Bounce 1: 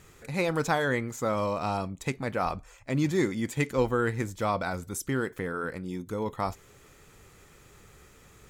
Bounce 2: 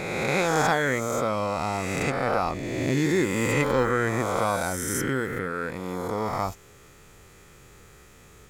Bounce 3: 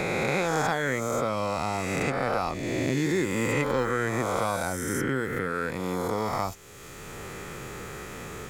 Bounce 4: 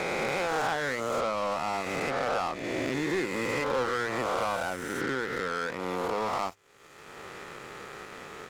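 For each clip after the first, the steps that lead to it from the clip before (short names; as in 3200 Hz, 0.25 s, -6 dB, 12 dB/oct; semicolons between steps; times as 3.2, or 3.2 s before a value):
spectral swells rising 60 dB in 2.09 s
three-band squash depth 70%; gain -2.5 dB
overdrive pedal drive 24 dB, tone 1700 Hz, clips at -11 dBFS; notches 50/100 Hz; power-law curve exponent 2; gain -3.5 dB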